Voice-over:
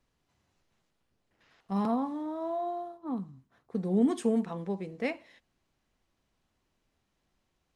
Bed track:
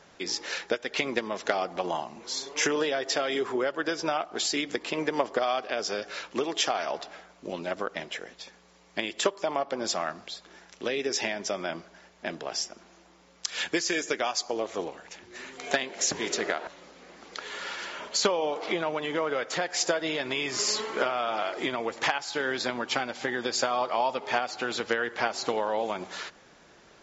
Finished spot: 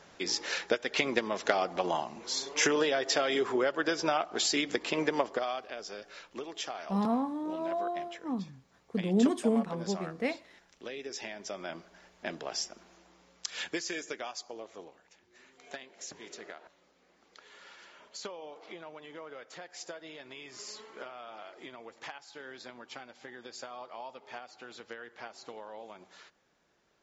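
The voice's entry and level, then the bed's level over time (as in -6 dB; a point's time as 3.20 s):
5.20 s, 0.0 dB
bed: 5.06 s -0.5 dB
5.79 s -11.5 dB
11.22 s -11.5 dB
12.06 s -3.5 dB
13.21 s -3.5 dB
15.08 s -17 dB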